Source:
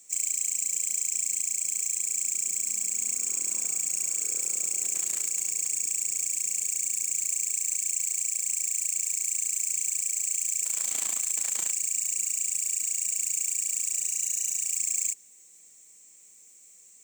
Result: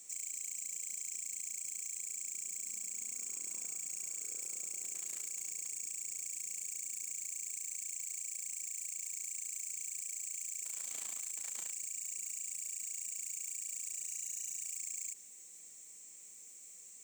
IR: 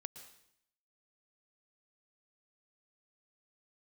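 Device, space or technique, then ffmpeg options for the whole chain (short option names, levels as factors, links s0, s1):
de-esser from a sidechain: -filter_complex "[0:a]asplit=2[s0][s1];[s1]highpass=6400,apad=whole_len=751214[s2];[s0][s2]sidechaincompress=threshold=0.00891:ratio=8:attack=3.5:release=28"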